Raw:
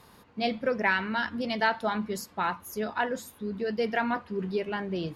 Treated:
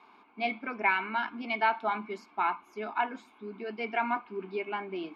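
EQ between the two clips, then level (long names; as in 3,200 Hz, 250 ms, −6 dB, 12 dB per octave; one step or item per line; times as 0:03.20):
high-pass filter 290 Hz 12 dB per octave
low-pass with resonance 2,200 Hz, resonance Q 16
phaser with its sweep stopped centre 520 Hz, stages 6
0.0 dB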